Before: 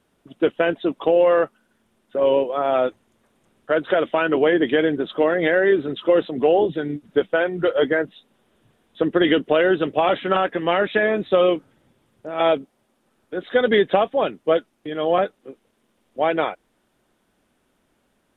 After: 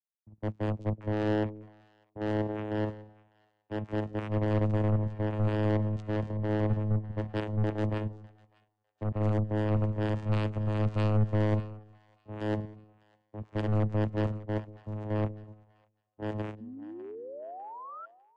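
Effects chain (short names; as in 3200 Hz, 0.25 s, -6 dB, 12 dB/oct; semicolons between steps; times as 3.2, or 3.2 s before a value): gate -50 dBFS, range -19 dB; LPF 2300 Hz 12 dB/oct; resonant low shelf 240 Hz +10.5 dB, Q 1.5; level quantiser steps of 10 dB; limiter -14 dBFS, peak gain reduction 6 dB; vocoder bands 4, saw 106 Hz; soft clip -26 dBFS, distortion -7 dB; painted sound rise, 16.6–18.06, 220–1400 Hz -36 dBFS; split-band echo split 590 Hz, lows 0.188 s, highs 0.601 s, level -12 dB; three-band expander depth 100%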